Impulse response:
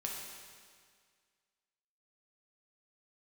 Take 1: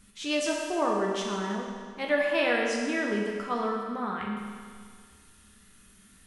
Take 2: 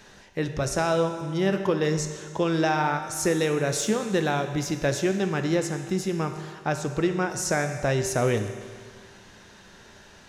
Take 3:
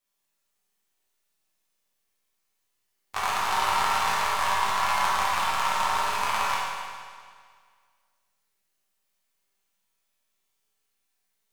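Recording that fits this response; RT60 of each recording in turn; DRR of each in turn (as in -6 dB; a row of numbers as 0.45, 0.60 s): 1; 1.9, 1.9, 1.9 s; -2.0, 6.0, -7.5 dB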